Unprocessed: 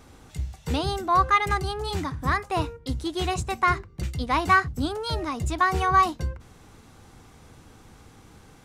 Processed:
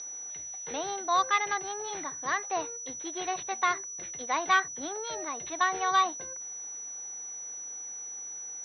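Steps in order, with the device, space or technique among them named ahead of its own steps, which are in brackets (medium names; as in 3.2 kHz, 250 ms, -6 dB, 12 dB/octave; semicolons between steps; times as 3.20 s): toy sound module (decimation joined by straight lines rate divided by 4×; class-D stage that switches slowly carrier 5.9 kHz; cabinet simulation 600–4900 Hz, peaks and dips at 950 Hz -5 dB, 1.3 kHz -7 dB, 2.7 kHz -4 dB, 3.9 kHz +9 dB)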